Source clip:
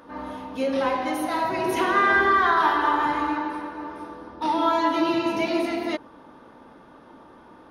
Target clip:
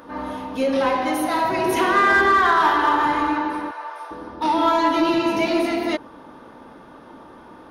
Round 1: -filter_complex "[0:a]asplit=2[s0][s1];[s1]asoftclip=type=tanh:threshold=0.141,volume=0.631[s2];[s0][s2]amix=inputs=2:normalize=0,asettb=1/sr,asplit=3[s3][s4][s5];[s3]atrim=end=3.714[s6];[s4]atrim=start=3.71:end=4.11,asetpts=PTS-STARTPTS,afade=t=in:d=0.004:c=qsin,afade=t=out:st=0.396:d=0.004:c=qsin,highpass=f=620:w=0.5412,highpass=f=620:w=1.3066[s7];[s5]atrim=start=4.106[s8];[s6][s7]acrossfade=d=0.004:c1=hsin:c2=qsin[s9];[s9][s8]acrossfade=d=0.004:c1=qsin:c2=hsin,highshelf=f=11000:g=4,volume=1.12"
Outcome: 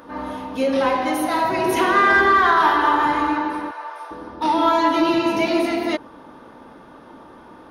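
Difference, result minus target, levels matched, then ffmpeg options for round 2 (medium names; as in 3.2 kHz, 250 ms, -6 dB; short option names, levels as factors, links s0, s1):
saturation: distortion -6 dB
-filter_complex "[0:a]asplit=2[s0][s1];[s1]asoftclip=type=tanh:threshold=0.0668,volume=0.631[s2];[s0][s2]amix=inputs=2:normalize=0,asettb=1/sr,asplit=3[s3][s4][s5];[s3]atrim=end=3.714[s6];[s4]atrim=start=3.71:end=4.11,asetpts=PTS-STARTPTS,afade=t=in:d=0.004:c=qsin,afade=t=out:st=0.396:d=0.004:c=qsin,highpass=f=620:w=0.5412,highpass=f=620:w=1.3066[s7];[s5]atrim=start=4.106[s8];[s6][s7]acrossfade=d=0.004:c1=hsin:c2=qsin[s9];[s9][s8]acrossfade=d=0.004:c1=qsin:c2=hsin,highshelf=f=11000:g=4,volume=1.12"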